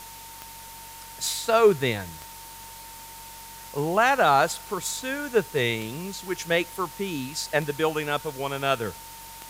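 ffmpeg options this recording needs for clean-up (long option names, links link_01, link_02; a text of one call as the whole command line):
ffmpeg -i in.wav -af "adeclick=threshold=4,bandreject=frequency=46.9:width_type=h:width=4,bandreject=frequency=93.8:width_type=h:width=4,bandreject=frequency=140.7:width_type=h:width=4,bandreject=frequency=187.6:width_type=h:width=4,bandreject=frequency=910:width=30,afwtdn=0.0071" out.wav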